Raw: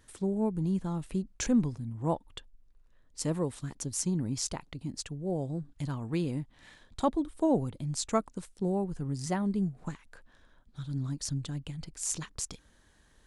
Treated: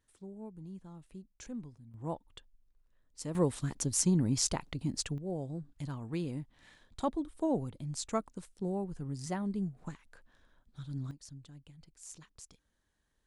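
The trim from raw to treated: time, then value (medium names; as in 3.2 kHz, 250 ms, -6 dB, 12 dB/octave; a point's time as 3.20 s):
-16.5 dB
from 1.94 s -8 dB
from 3.35 s +3 dB
from 5.18 s -5 dB
from 11.11 s -16 dB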